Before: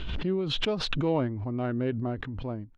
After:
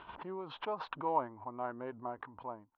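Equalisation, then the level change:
resonant band-pass 960 Hz, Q 4.6
high-frequency loss of the air 140 metres
+7.0 dB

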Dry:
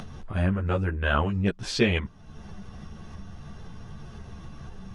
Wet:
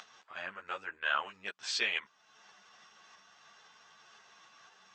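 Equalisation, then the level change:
high-pass filter 1,200 Hz 12 dB per octave
linear-phase brick-wall low-pass 8,300 Hz
−2.5 dB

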